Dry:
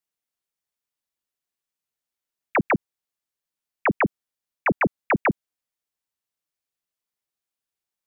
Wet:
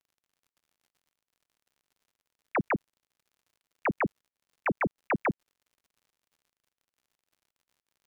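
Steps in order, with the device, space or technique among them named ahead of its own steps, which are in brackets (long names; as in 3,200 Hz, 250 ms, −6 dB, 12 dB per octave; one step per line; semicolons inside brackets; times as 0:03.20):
lo-fi chain (low-pass filter 3,000 Hz; tape wow and flutter; surface crackle −49 dBFS)
level −7 dB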